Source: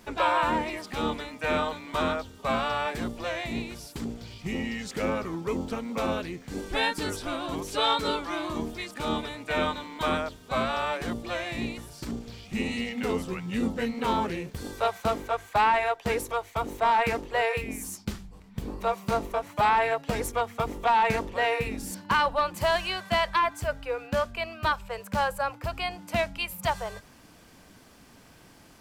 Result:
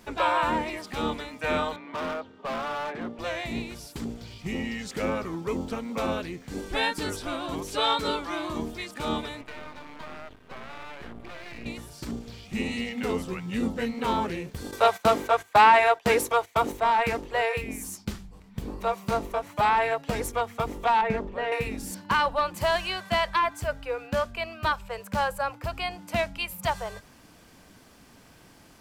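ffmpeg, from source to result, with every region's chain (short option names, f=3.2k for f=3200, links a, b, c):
-filter_complex "[0:a]asettb=1/sr,asplit=3[a][b][c];[a]atrim=end=1.764[d];[b]atrim=start=1.76:end=3.19,asetpts=PTS-STARTPTS,afade=t=in:d=0.004:c=qsin,afade=t=out:st=1.426:d=0.004:c=qsin,highpass=190,lowpass=2.2k,asoftclip=type=hard:threshold=-28.5dB[e];[c]atrim=start=3.186[f];[d][e]acrossfade=d=0.004:c1=hsin:c2=qsin[g];[g][f]acrossfade=d=0.004:c1=qsin:c2=hsin,asettb=1/sr,asplit=3[h][i][j];[h]atrim=end=9.414[k];[i]atrim=start=9.41:end=11.66,asetpts=PTS-STARTPTS,afade=t=in:d=0.004:c=qsin,afade=t=out:st=2.246:d=0.004:c=qsin,highshelf=f=3.5k:t=q:w=1.5:g=-13,acompressor=threshold=-33dB:ratio=10:attack=3.2:release=140:knee=1:detection=peak,aeval=exprs='max(val(0),0)':c=same[l];[j]atrim=start=11.656[m];[k][l]acrossfade=d=0.004:c1=hsin:c2=qsin[n];[n][m]acrossfade=d=0.004:c1=qsin:c2=hsin,asettb=1/sr,asplit=3[o][p][q];[o]atrim=end=14.714[r];[p]atrim=start=14.71:end=16.72,asetpts=PTS-STARTPTS,afade=t=in:d=0.004:c=qsin,afade=t=out:st=2.006:d=0.004:c=qsin,agate=range=-14dB:threshold=-43dB:ratio=16:release=100:detection=peak,highpass=f=190:p=1,acontrast=65[s];[q]atrim=start=16.716[t];[r][s]acrossfade=d=0.004:c1=hsin:c2=qsin[u];[u][t]acrossfade=d=0.004:c1=qsin:c2=hsin,asettb=1/sr,asplit=3[v][w][x];[v]atrim=end=21.014[y];[w]atrim=start=21.01:end=21.52,asetpts=PTS-STARTPTS,afade=t=in:d=0.004:c=qsin,afade=t=out:st=0.506:d=0.004:c=qsin,lowpass=f=1.1k:p=1,aecho=1:1:4.9:0.42,atrim=end_sample=22491[z];[x]atrim=start=21.516[aa];[y][z]acrossfade=d=0.004:c1=hsin:c2=qsin[ab];[ab][aa]acrossfade=d=0.004:c1=qsin:c2=hsin"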